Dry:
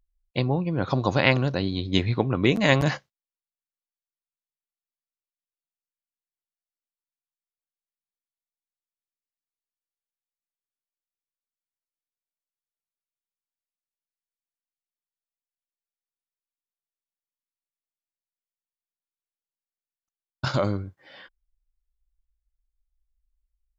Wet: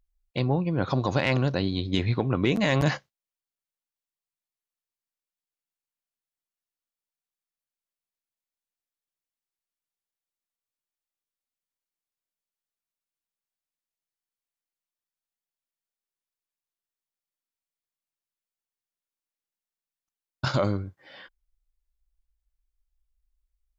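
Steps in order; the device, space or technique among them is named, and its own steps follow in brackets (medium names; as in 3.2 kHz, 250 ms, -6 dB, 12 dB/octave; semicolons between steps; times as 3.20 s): soft clipper into limiter (saturation -4.5 dBFS, distortion -24 dB; peak limiter -12 dBFS, peak gain reduction 6.5 dB)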